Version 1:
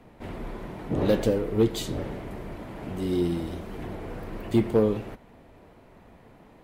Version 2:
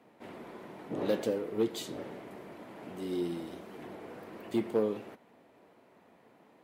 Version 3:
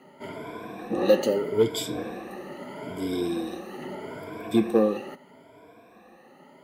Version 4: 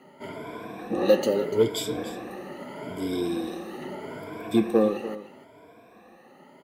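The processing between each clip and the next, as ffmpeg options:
-af "highpass=230,volume=0.473"
-af "afftfilt=real='re*pow(10,17/40*sin(2*PI*(1.7*log(max(b,1)*sr/1024/100)/log(2)-(0.78)*(pts-256)/sr)))':imag='im*pow(10,17/40*sin(2*PI*(1.7*log(max(b,1)*sr/1024/100)/log(2)-(0.78)*(pts-256)/sr)))':win_size=1024:overlap=0.75,volume=2"
-af "aecho=1:1:293:0.2"

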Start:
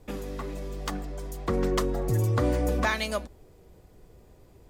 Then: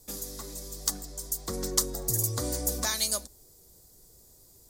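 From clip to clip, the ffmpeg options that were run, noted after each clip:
-af "aexciter=amount=12.6:drive=4.8:freq=4100,volume=0.376"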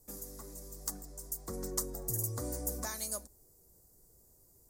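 -af "equalizer=f=3500:w=1.1:g=-14.5,volume=0.501"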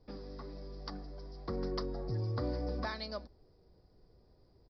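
-af "aresample=11025,aresample=44100,volume=1.58"

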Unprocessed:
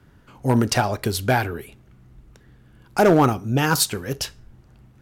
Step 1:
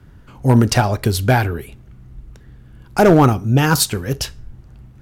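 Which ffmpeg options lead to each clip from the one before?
-af "lowshelf=f=130:g=10,volume=1.41"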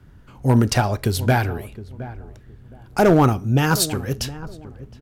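-filter_complex "[0:a]asplit=2[s0][s1];[s1]adelay=716,lowpass=f=960:p=1,volume=0.188,asplit=2[s2][s3];[s3]adelay=716,lowpass=f=960:p=1,volume=0.26,asplit=2[s4][s5];[s5]adelay=716,lowpass=f=960:p=1,volume=0.26[s6];[s0][s2][s4][s6]amix=inputs=4:normalize=0,volume=0.668"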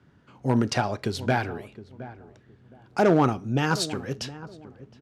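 -af "highpass=150,lowpass=6100,volume=0.596"

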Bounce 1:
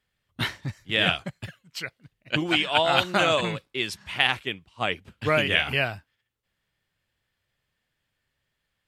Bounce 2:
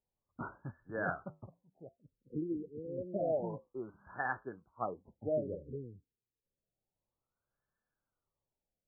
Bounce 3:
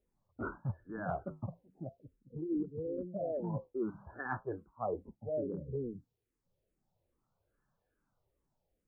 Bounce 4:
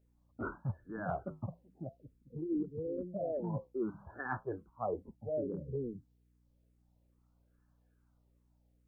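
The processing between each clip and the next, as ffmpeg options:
-af "equalizer=f=91:t=o:w=2.3:g=-7,flanger=delay=1.8:depth=7.9:regen=-78:speed=0.36:shape=triangular,afftfilt=real='re*lt(b*sr/1024,480*pow(1800/480,0.5+0.5*sin(2*PI*0.29*pts/sr)))':imag='im*lt(b*sr/1024,480*pow(1800/480,0.5+0.5*sin(2*PI*0.29*pts/sr)))':win_size=1024:overlap=0.75,volume=0.708"
-filter_complex "[0:a]tiltshelf=f=1500:g=7,areverse,acompressor=threshold=0.0112:ratio=16,areverse,asplit=2[s0][s1];[s1]afreqshift=-2.4[s2];[s0][s2]amix=inputs=2:normalize=1,volume=2.51"
-af "aeval=exprs='val(0)+0.000316*(sin(2*PI*60*n/s)+sin(2*PI*2*60*n/s)/2+sin(2*PI*3*60*n/s)/3+sin(2*PI*4*60*n/s)/4+sin(2*PI*5*60*n/s)/5)':c=same"

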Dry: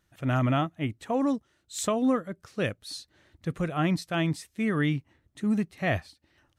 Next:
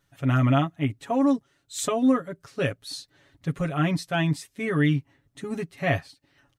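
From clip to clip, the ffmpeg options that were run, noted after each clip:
-af "aecho=1:1:7.2:0.88"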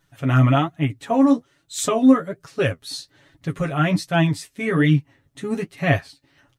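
-af "flanger=delay=6:depth=9.1:regen=38:speed=1.2:shape=sinusoidal,volume=2.66"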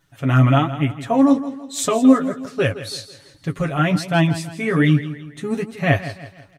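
-af "aecho=1:1:164|328|492|656:0.211|0.0888|0.0373|0.0157,volume=1.19"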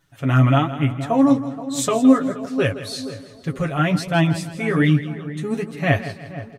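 -filter_complex "[0:a]asplit=2[s0][s1];[s1]adelay=474,lowpass=f=1100:p=1,volume=0.211,asplit=2[s2][s3];[s3]adelay=474,lowpass=f=1100:p=1,volume=0.49,asplit=2[s4][s5];[s5]adelay=474,lowpass=f=1100:p=1,volume=0.49,asplit=2[s6][s7];[s7]adelay=474,lowpass=f=1100:p=1,volume=0.49,asplit=2[s8][s9];[s9]adelay=474,lowpass=f=1100:p=1,volume=0.49[s10];[s0][s2][s4][s6][s8][s10]amix=inputs=6:normalize=0,volume=0.891"

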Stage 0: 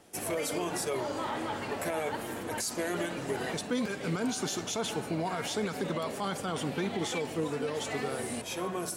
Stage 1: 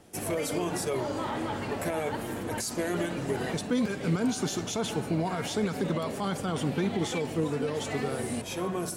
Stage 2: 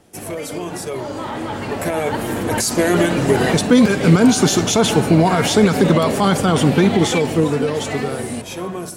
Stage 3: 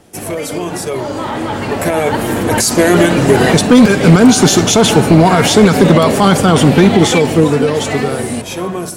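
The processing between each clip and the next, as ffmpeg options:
-af "lowshelf=f=280:g=8.5"
-af "dynaudnorm=f=490:g=9:m=4.73,volume=1.41"
-af "asoftclip=type=hard:threshold=0.422,volume=2.11"

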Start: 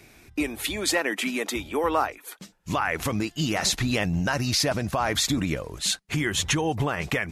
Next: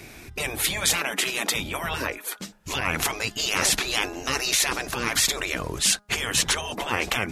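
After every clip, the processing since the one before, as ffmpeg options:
-af "afftfilt=real='re*lt(hypot(re,im),0.112)':imag='im*lt(hypot(re,im),0.112)':win_size=1024:overlap=0.75,bandreject=f=206.3:t=h:w=4,bandreject=f=412.6:t=h:w=4,bandreject=f=618.9:t=h:w=4,bandreject=f=825.2:t=h:w=4,bandreject=f=1031.5:t=h:w=4,bandreject=f=1237.8:t=h:w=4,bandreject=f=1444.1:t=h:w=4,bandreject=f=1650.4:t=h:w=4,volume=2.66"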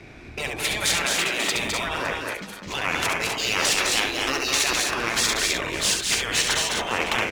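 -filter_complex "[0:a]acrossover=split=280[s0][s1];[s0]alimiter=level_in=3.16:limit=0.0631:level=0:latency=1:release=478,volume=0.316[s2];[s1]adynamicsmooth=sensitivity=4:basefreq=3300[s3];[s2][s3]amix=inputs=2:normalize=0,aecho=1:1:69|208|249|267|560:0.531|0.596|0.447|0.422|0.141"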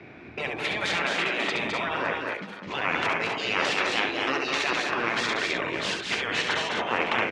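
-af "highpass=140,lowpass=2700"

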